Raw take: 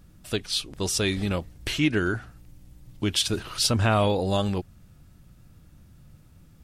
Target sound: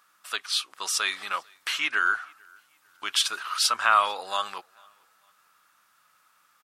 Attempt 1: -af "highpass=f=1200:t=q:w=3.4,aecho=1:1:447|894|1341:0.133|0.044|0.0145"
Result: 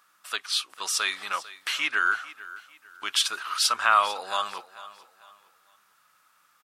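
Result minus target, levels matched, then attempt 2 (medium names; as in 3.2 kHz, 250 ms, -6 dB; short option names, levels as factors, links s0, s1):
echo-to-direct +12 dB
-af "highpass=f=1200:t=q:w=3.4,aecho=1:1:447|894:0.0335|0.0111"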